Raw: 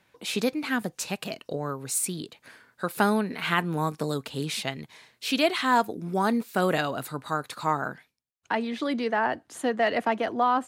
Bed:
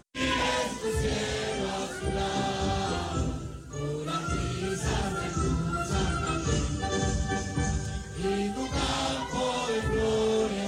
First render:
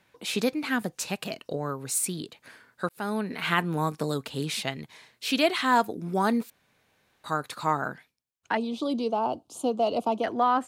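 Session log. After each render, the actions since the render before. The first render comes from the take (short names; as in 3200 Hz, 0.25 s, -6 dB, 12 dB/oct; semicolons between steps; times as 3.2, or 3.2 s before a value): 2.89–3.35 fade in; 6.5–7.24 room tone; 8.57–10.24 Butterworth band-stop 1800 Hz, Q 0.93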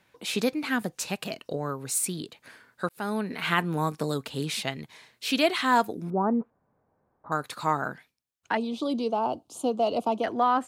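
6.1–7.32 LPF 1100 Hz 24 dB/oct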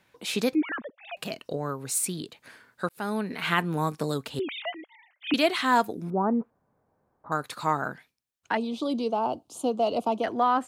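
0.55–1.17 sine-wave speech; 4.39–5.34 sine-wave speech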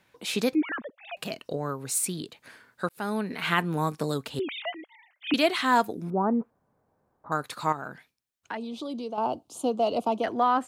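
7.72–9.18 compressor 2:1, threshold -36 dBFS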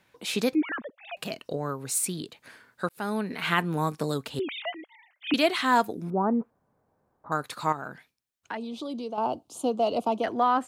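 nothing audible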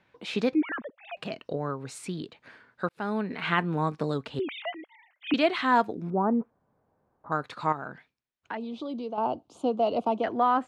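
Bessel low-pass 2900 Hz, order 2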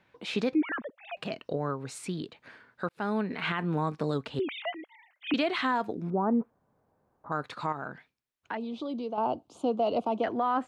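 limiter -18.5 dBFS, peak gain reduction 9 dB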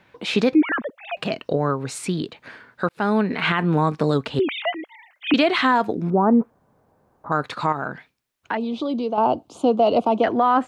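gain +10 dB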